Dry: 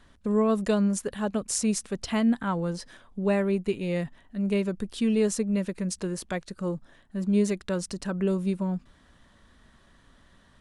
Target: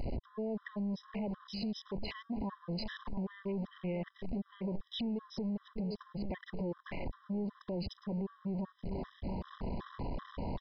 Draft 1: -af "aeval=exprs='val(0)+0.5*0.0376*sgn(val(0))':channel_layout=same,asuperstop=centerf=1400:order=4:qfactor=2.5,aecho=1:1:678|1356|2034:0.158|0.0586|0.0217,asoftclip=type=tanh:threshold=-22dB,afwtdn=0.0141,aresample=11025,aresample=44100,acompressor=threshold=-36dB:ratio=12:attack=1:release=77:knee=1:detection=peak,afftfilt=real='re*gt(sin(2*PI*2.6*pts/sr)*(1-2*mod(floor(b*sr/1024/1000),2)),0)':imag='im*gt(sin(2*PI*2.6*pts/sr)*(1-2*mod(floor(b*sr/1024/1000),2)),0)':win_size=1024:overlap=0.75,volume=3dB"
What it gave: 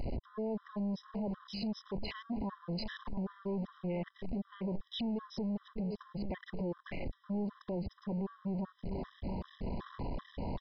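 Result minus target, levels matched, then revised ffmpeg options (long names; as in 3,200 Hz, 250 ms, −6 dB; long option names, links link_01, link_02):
soft clipping: distortion +9 dB
-af "aeval=exprs='val(0)+0.5*0.0376*sgn(val(0))':channel_layout=same,asuperstop=centerf=1400:order=4:qfactor=2.5,aecho=1:1:678|1356|2034:0.158|0.0586|0.0217,asoftclip=type=tanh:threshold=-15.5dB,afwtdn=0.0141,aresample=11025,aresample=44100,acompressor=threshold=-36dB:ratio=12:attack=1:release=77:knee=1:detection=peak,afftfilt=real='re*gt(sin(2*PI*2.6*pts/sr)*(1-2*mod(floor(b*sr/1024/1000),2)),0)':imag='im*gt(sin(2*PI*2.6*pts/sr)*(1-2*mod(floor(b*sr/1024/1000),2)),0)':win_size=1024:overlap=0.75,volume=3dB"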